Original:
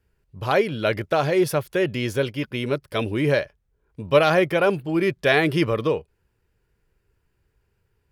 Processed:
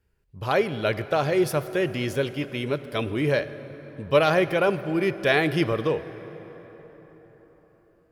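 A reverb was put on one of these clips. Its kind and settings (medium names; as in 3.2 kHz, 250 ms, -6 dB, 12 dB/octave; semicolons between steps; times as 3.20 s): plate-style reverb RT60 4.8 s, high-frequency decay 0.55×, DRR 13 dB; trim -2.5 dB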